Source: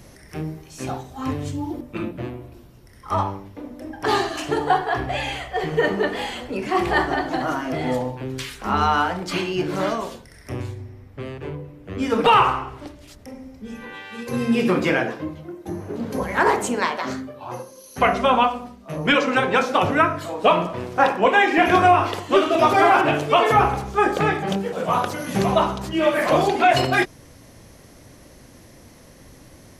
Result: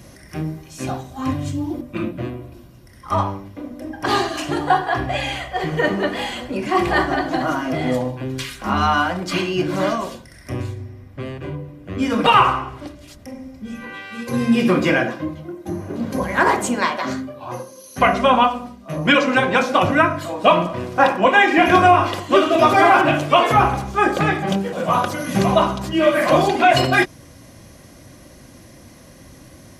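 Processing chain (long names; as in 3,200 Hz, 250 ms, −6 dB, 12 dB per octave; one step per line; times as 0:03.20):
parametric band 710 Hz −2 dB 0.22 octaves
notch comb filter 440 Hz
level +4 dB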